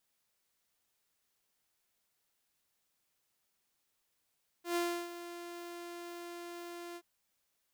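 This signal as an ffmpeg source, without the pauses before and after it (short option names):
-f lavfi -i "aevalsrc='0.0422*(2*mod(346*t,1)-1)':d=2.377:s=44100,afade=t=in:d=0.117,afade=t=out:st=0.117:d=0.322:silence=0.211,afade=t=out:st=2.32:d=0.057"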